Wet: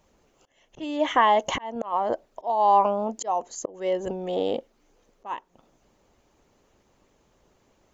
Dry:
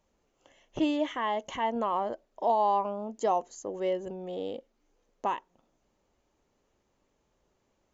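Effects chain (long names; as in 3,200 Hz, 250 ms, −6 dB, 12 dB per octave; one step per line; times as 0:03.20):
harmonic and percussive parts rebalanced percussive +6 dB
volume swells 429 ms
dynamic equaliser 810 Hz, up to +5 dB, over −43 dBFS, Q 1.2
level +6.5 dB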